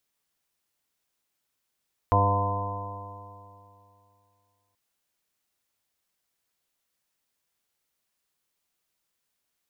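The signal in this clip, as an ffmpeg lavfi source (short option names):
-f lavfi -i "aevalsrc='0.0891*pow(10,-3*t/2.66)*sin(2*PI*98.64*t)+0.02*pow(10,-3*t/2.66)*sin(2*PI*197.5*t)+0.0251*pow(10,-3*t/2.66)*sin(2*PI*296.81*t)+0.00944*pow(10,-3*t/2.66)*sin(2*PI*396.79*t)+0.0447*pow(10,-3*t/2.66)*sin(2*PI*497.66*t)+0.0188*pow(10,-3*t/2.66)*sin(2*PI*599.64*t)+0.0562*pow(10,-3*t/2.66)*sin(2*PI*702.93*t)+0.00944*pow(10,-3*t/2.66)*sin(2*PI*807.76*t)+0.0501*pow(10,-3*t/2.66)*sin(2*PI*914.31*t)+0.0841*pow(10,-3*t/2.66)*sin(2*PI*1022.78*t)':d=2.63:s=44100"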